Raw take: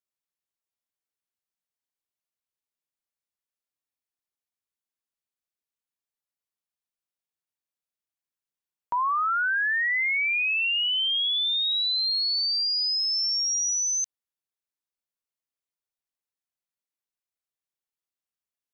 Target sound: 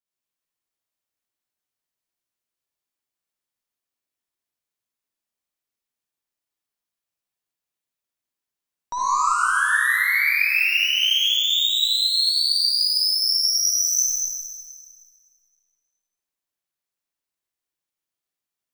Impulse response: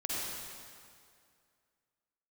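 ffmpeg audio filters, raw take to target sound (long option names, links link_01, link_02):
-filter_complex "[0:a]aeval=exprs='0.0841*(cos(1*acos(clip(val(0)/0.0841,-1,1)))-cos(1*PI/2))+0.00668*(cos(4*acos(clip(val(0)/0.0841,-1,1)))-cos(4*PI/2))+0.015*(cos(6*acos(clip(val(0)/0.0841,-1,1)))-cos(6*PI/2))+0.0015*(cos(8*acos(clip(val(0)/0.0841,-1,1)))-cos(8*PI/2))':channel_layout=same[link_01];[1:a]atrim=start_sample=2205[link_02];[link_01][link_02]afir=irnorm=-1:irlink=0"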